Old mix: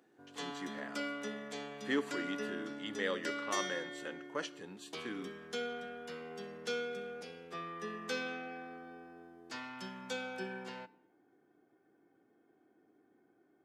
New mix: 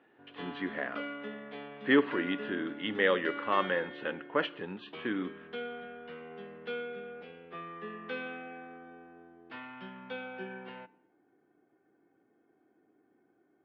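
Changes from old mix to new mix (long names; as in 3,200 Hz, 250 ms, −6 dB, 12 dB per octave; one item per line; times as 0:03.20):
speech +9.5 dB
master: add Butterworth low-pass 3,200 Hz 36 dB per octave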